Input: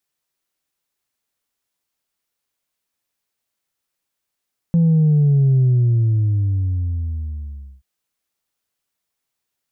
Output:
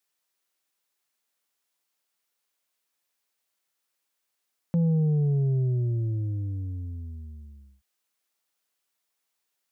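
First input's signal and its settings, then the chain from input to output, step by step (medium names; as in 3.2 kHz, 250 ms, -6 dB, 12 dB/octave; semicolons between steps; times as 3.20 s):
sub drop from 170 Hz, over 3.08 s, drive 1 dB, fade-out 2.23 s, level -11.5 dB
high-pass 390 Hz 6 dB/octave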